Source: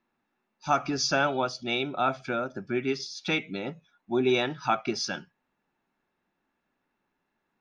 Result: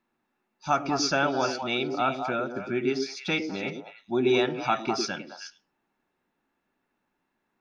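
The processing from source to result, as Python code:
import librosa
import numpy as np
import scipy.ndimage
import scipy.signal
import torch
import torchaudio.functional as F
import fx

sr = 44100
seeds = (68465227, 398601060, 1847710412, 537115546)

y = fx.echo_stepped(x, sr, ms=105, hz=330.0, octaves=1.4, feedback_pct=70, wet_db=-1.5)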